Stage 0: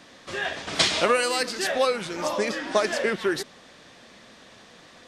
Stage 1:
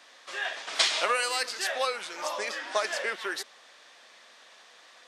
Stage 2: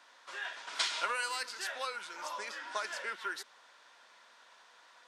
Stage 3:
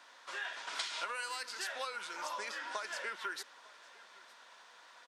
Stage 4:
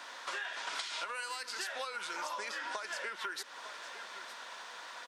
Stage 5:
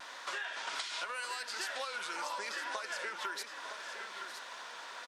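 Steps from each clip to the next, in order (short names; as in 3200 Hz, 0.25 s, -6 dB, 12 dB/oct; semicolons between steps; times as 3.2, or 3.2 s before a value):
HPF 710 Hz 12 dB/oct; gain -2.5 dB
small resonant body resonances 980/1400 Hz, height 12 dB, ringing for 25 ms; dynamic EQ 710 Hz, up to -6 dB, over -39 dBFS, Q 0.8; gain -8.5 dB
compressor 6:1, threshold -38 dBFS, peak gain reduction 10.5 dB; echo 0.907 s -22 dB; gain +2 dB
compressor 6:1, threshold -48 dBFS, peak gain reduction 14 dB; gain +11 dB
vibrato 1.2 Hz 38 cents; on a send: echo 0.963 s -9 dB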